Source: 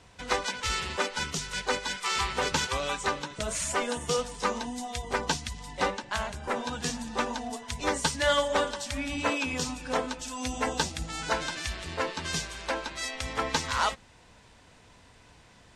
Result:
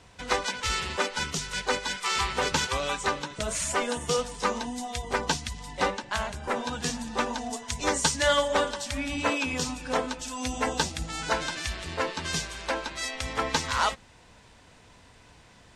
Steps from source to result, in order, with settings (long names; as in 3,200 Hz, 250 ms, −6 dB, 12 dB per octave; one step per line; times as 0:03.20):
0:07.38–0:08.28: parametric band 6,800 Hz +5.5 dB 0.85 octaves
level +1.5 dB